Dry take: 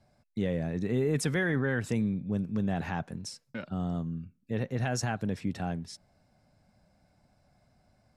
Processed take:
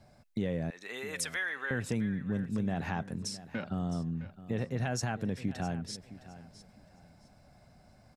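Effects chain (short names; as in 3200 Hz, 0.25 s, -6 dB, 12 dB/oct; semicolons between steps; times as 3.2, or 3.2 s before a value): 0.7–1.71 HPF 1200 Hz 12 dB/oct; compressor 2:1, threshold -43 dBFS, peak gain reduction 10 dB; feedback echo 0.662 s, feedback 25%, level -15.5 dB; gain +6.5 dB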